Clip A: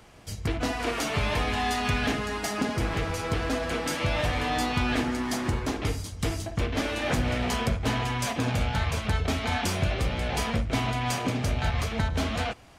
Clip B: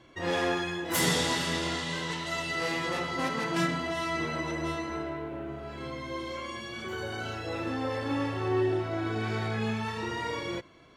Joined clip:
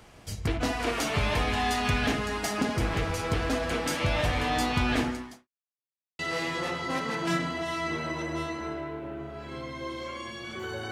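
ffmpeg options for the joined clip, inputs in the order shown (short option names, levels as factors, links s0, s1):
-filter_complex "[0:a]apad=whole_dur=10.91,atrim=end=10.91,asplit=2[s0][s1];[s0]atrim=end=5.48,asetpts=PTS-STARTPTS,afade=t=out:st=5.04:d=0.44:c=qua[s2];[s1]atrim=start=5.48:end=6.19,asetpts=PTS-STARTPTS,volume=0[s3];[1:a]atrim=start=2.48:end=7.2,asetpts=PTS-STARTPTS,afade=t=in:d=0.004:c=hsin[s4];[s2][s3][s4]concat=n=3:v=0:a=1"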